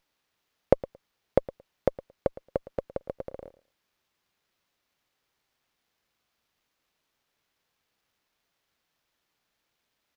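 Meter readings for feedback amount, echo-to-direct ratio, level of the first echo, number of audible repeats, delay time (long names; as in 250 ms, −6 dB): 15%, −18.0 dB, −18.0 dB, 2, 112 ms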